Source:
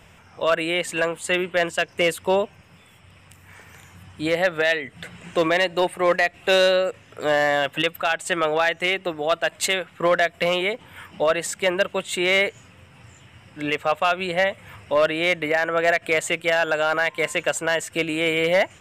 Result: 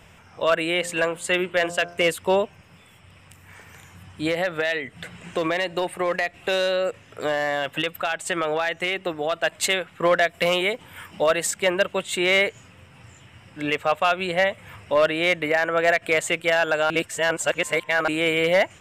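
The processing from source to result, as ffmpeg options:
-filter_complex "[0:a]asplit=3[a][b][c];[a]afade=t=out:st=0.81:d=0.02[d];[b]bandreject=f=86.62:t=h:w=4,bandreject=f=173.24:t=h:w=4,bandreject=f=259.86:t=h:w=4,bandreject=f=346.48:t=h:w=4,bandreject=f=433.1:t=h:w=4,bandreject=f=519.72:t=h:w=4,bandreject=f=606.34:t=h:w=4,bandreject=f=692.96:t=h:w=4,bandreject=f=779.58:t=h:w=4,bandreject=f=866.2:t=h:w=4,bandreject=f=952.82:t=h:w=4,bandreject=f=1.03944k:t=h:w=4,bandreject=f=1.12606k:t=h:w=4,bandreject=f=1.21268k:t=h:w=4,bandreject=f=1.2993k:t=h:w=4,bandreject=f=1.38592k:t=h:w=4,bandreject=f=1.47254k:t=h:w=4,bandreject=f=1.55916k:t=h:w=4,afade=t=in:st=0.81:d=0.02,afade=t=out:st=2.03:d=0.02[e];[c]afade=t=in:st=2.03:d=0.02[f];[d][e][f]amix=inputs=3:normalize=0,asettb=1/sr,asplit=3[g][h][i];[g]atrim=end=4.304[j];[h]atrim=start=4.3:end=9.39,asetpts=PTS-STARTPTS,afade=t=in:d=0.004:c=qsin,afade=t=out:st=5.086:d=0.004:c=qsin,acompressor=threshold=-19dB:ratio=6:attack=3.2:release=140:knee=1:detection=peak[k];[i]atrim=start=9.386[l];[j][k]acrossfade=d=0.004:c1=hsin:c2=qsin[m];[m][l]acrossfade=d=0.004:c1=qsin:c2=hsin,asettb=1/sr,asplit=3[n][o][p];[n]atrim=end=10.294[q];[o]atrim=start=10.29:end=11.51,asetpts=PTS-STARTPTS,afade=t=in:d=0.004:c=qsin,afade=t=out:st=1.216:d=0.004:c=qsin,highshelf=f=6.3k:g=7[r];[p]atrim=start=11.506[s];[q][r]acrossfade=d=0.004:c1=hsin:c2=qsin[t];[t][s]acrossfade=d=0.004:c1=qsin:c2=hsin,asplit=3[u][v][w];[u]atrim=end=16.902[x];[v]atrim=start=16.898:end=18.082,asetpts=PTS-STARTPTS,areverse[y];[w]atrim=start=18.078[z];[x][y]acrossfade=d=0.004:c1=hsin:c2=hsin[aa];[aa][z]acrossfade=d=0.004:c1=hsin:c2=hsin"

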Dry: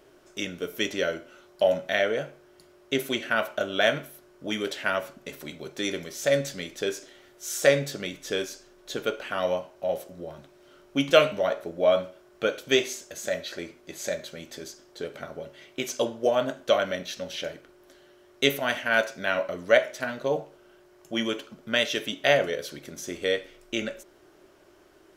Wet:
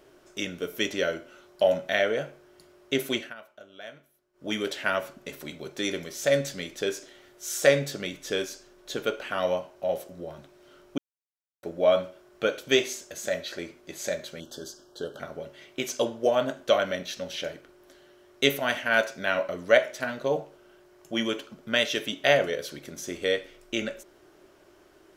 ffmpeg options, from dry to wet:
-filter_complex "[0:a]asettb=1/sr,asplit=3[a][b][c];[a]atrim=end=14.404[d];[b]atrim=start=14.4:end=15.2,asetpts=PTS-STARTPTS,afade=t=in:d=0.004:c=qsin,afade=t=out:st=0.796:d=0.004:c=qsin,asuperstop=centerf=2200:order=12:qfactor=1.9[e];[c]atrim=start=15.196[f];[d][e]acrossfade=d=0.004:c1=hsin:c2=qsin[g];[g][f]acrossfade=d=0.004:c1=qsin:c2=hsin,asplit=5[h][i][j][k][l];[h]atrim=end=3.34,asetpts=PTS-STARTPTS,afade=t=out:st=3.17:d=0.17:silence=0.0944061[m];[i]atrim=start=3.34:end=4.33,asetpts=PTS-STARTPTS,volume=-20.5dB[n];[j]atrim=start=4.33:end=10.98,asetpts=PTS-STARTPTS,afade=t=in:d=0.17:silence=0.0944061,afade=t=out:st=6.646:d=0.004:c=hsin[o];[k]atrim=start=10.98:end=11.63,asetpts=PTS-STARTPTS,volume=0[p];[l]atrim=start=11.63,asetpts=PTS-STARTPTS,afade=t=in:d=0.004:c=hsin[q];[m][n][o][p][q]concat=n=5:v=0:a=1"

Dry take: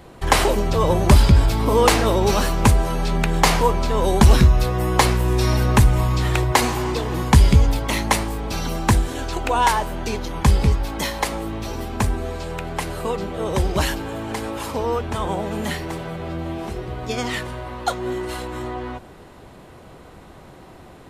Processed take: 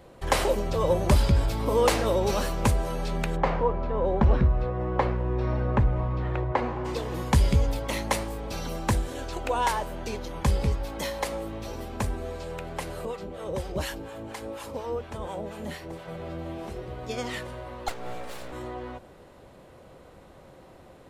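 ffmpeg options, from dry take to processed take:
-filter_complex "[0:a]asplit=3[a][b][c];[a]afade=t=out:st=3.35:d=0.02[d];[b]lowpass=1.6k,afade=t=in:st=3.35:d=0.02,afade=t=out:st=6.84:d=0.02[e];[c]afade=t=in:st=6.84:d=0.02[f];[d][e][f]amix=inputs=3:normalize=0,asettb=1/sr,asplit=3[g][h][i];[g]atrim=end=13.054[j];[h]atrim=start=13.05:end=16.08,asetpts=PTS-STARTPTS,afade=t=in:d=0.004:c=qsin,afade=t=out:st=3.026:d=0.004:c=qsin,acrossover=split=720[k][l];[k]aeval=exprs='val(0)*(1-0.7/2+0.7/2*cos(2*PI*4.2*n/s))':c=same[m];[l]aeval=exprs='val(0)*(1-0.7/2-0.7/2*cos(2*PI*4.2*n/s))':c=same[n];[m][n]amix=inputs=2:normalize=0[o];[i]atrim=start=16.076[p];[j][o]acrossfade=d=0.004:c1=hsin:c2=qsin[q];[q][p]acrossfade=d=0.004:c1=qsin:c2=hsin,asettb=1/sr,asplit=3[r][s][t];[r]atrim=end=17.884[u];[s]atrim=start=17.88:end=18.52,asetpts=PTS-STARTPTS,afade=t=in:d=0.004:c=qsin,afade=t=out:st=0.636:d=0.004:c=qsin,aeval=exprs='abs(val(0))':c=same[v];[t]atrim=start=18.516[w];[u][v]acrossfade=d=0.004:c1=hsin:c2=qsin[x];[x][w]acrossfade=d=0.004:c1=qsin:c2=hsin,equalizer=f=540:t=o:w=0.3:g=8.5,volume=-8.5dB"

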